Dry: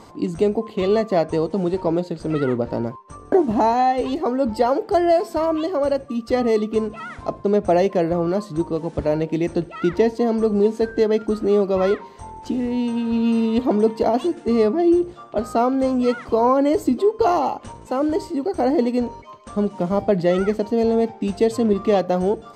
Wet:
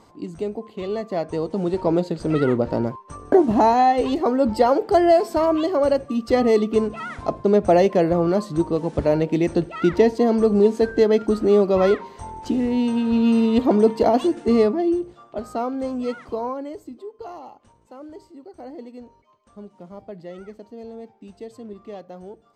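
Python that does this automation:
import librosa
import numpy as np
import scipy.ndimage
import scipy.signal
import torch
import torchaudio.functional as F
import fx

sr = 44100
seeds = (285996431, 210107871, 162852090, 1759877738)

y = fx.gain(x, sr, db=fx.line((0.96, -8.5), (1.98, 1.5), (14.55, 1.5), (15.02, -7.0), (16.28, -7.0), (16.86, -19.0)))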